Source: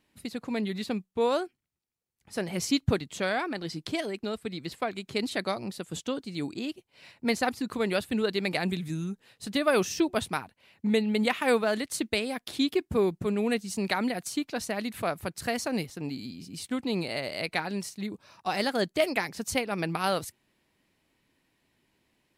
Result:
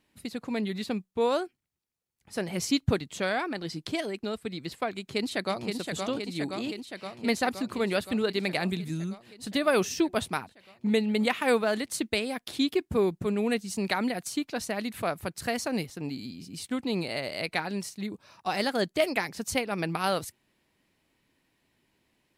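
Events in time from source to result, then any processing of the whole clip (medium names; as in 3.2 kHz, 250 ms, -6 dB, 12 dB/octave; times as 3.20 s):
4.97–5.67 s: echo throw 520 ms, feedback 75%, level -4.5 dB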